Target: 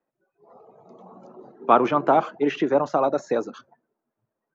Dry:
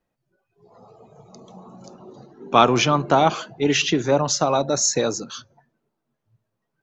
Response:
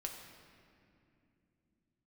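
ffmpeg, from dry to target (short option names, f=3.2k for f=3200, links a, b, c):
-filter_complex "[0:a]acrossover=split=3000[a][b];[b]acompressor=threshold=-28dB:ratio=4:attack=1:release=60[c];[a][c]amix=inputs=2:normalize=0,acrossover=split=200 2100:gain=0.0891 1 0.112[d][e][f];[d][e][f]amix=inputs=3:normalize=0,atempo=1.5"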